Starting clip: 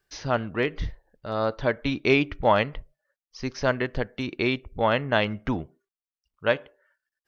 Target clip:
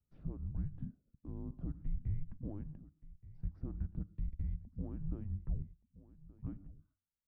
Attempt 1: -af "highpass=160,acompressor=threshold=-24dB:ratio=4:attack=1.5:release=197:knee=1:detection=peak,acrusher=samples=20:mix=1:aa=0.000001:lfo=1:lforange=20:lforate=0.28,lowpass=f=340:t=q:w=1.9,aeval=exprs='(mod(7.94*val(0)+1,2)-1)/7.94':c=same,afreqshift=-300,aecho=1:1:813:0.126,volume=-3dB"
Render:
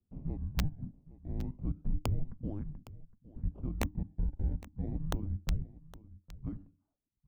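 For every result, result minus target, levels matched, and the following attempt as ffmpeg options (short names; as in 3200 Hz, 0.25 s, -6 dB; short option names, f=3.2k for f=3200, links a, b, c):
decimation with a swept rate: distortion +11 dB; echo 0.362 s early; compressor: peak gain reduction -5.5 dB
-af "highpass=160,acompressor=threshold=-24dB:ratio=4:attack=1.5:release=197:knee=1:detection=peak,acrusher=samples=4:mix=1:aa=0.000001:lfo=1:lforange=4:lforate=0.28,lowpass=f=340:t=q:w=1.9,aeval=exprs='(mod(7.94*val(0)+1,2)-1)/7.94':c=same,afreqshift=-300,aecho=1:1:813:0.126,volume=-3dB"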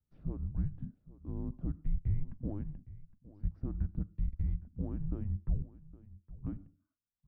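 echo 0.362 s early; compressor: peak gain reduction -5.5 dB
-af "highpass=160,acompressor=threshold=-24dB:ratio=4:attack=1.5:release=197:knee=1:detection=peak,acrusher=samples=4:mix=1:aa=0.000001:lfo=1:lforange=4:lforate=0.28,lowpass=f=340:t=q:w=1.9,aeval=exprs='(mod(7.94*val(0)+1,2)-1)/7.94':c=same,afreqshift=-300,aecho=1:1:1175:0.126,volume=-3dB"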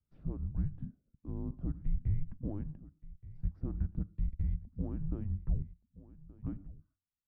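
compressor: peak gain reduction -5.5 dB
-af "highpass=160,acompressor=threshold=-31dB:ratio=4:attack=1.5:release=197:knee=1:detection=peak,acrusher=samples=4:mix=1:aa=0.000001:lfo=1:lforange=4:lforate=0.28,lowpass=f=340:t=q:w=1.9,aeval=exprs='(mod(7.94*val(0)+1,2)-1)/7.94':c=same,afreqshift=-300,aecho=1:1:1175:0.126,volume=-3dB"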